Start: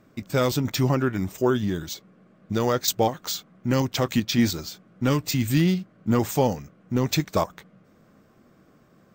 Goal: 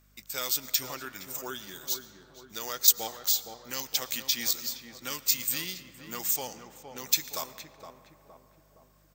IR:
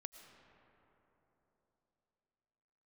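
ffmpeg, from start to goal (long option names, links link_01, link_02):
-filter_complex "[0:a]asettb=1/sr,asplit=3[link_01][link_02][link_03];[link_01]atrim=end=6.364[link_04];[link_02]atrim=start=6.36:end=6.98,asetpts=PTS-STARTPTS,afade=type=in:duration=0.004:curve=qsin,afade=type=out:start_time=0.616:duration=0.004:curve=qsin,adynamicsmooth=sensitivity=4.5:basefreq=7000[link_05];[link_03]atrim=start=6.976[link_06];[link_04][link_05]acrossfade=duration=0.004:curve1=hsin:curve2=qsin[link_07];[link_07][link_06]acrossfade=duration=0.004:curve1=qsin:curve2=hsin,aderivative,aeval=exprs='val(0)+0.000447*(sin(2*PI*50*n/s)+sin(2*PI*2*50*n/s)/2+sin(2*PI*3*50*n/s)/3+sin(2*PI*4*50*n/s)/4+sin(2*PI*5*50*n/s)/5)':channel_layout=same,asplit=2[link_08][link_09];[link_09]adelay=466,lowpass=frequency=1100:poles=1,volume=-7dB,asplit=2[link_10][link_11];[link_11]adelay=466,lowpass=frequency=1100:poles=1,volume=0.54,asplit=2[link_12][link_13];[link_13]adelay=466,lowpass=frequency=1100:poles=1,volume=0.54,asplit=2[link_14][link_15];[link_15]adelay=466,lowpass=frequency=1100:poles=1,volume=0.54,asplit=2[link_16][link_17];[link_17]adelay=466,lowpass=frequency=1100:poles=1,volume=0.54,asplit=2[link_18][link_19];[link_19]adelay=466,lowpass=frequency=1100:poles=1,volume=0.54,asplit=2[link_20][link_21];[link_21]adelay=466,lowpass=frequency=1100:poles=1,volume=0.54[link_22];[link_08][link_10][link_12][link_14][link_16][link_18][link_20][link_22]amix=inputs=8:normalize=0,asplit=2[link_23][link_24];[1:a]atrim=start_sample=2205[link_25];[link_24][link_25]afir=irnorm=-1:irlink=0,volume=2.5dB[link_26];[link_23][link_26]amix=inputs=2:normalize=0"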